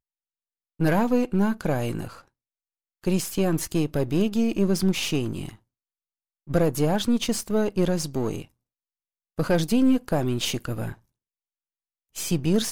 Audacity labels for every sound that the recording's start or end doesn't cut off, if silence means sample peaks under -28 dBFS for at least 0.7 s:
0.800000	2.080000	sound
3.040000	5.490000	sound
6.500000	8.420000	sound
9.390000	10.920000	sound